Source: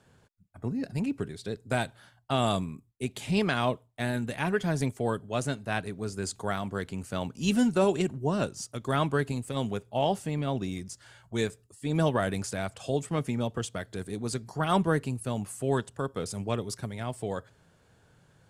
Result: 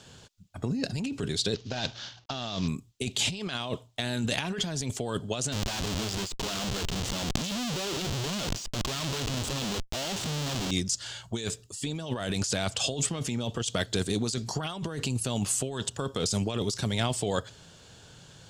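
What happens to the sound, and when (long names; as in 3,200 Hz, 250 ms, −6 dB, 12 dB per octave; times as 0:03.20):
0:01.54–0:02.68: variable-slope delta modulation 32 kbit/s
0:05.52–0:10.71: comparator with hysteresis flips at −43 dBFS
whole clip: flat-topped bell 4,600 Hz +11 dB; compressor whose output falls as the input rises −34 dBFS, ratio −1; level +3 dB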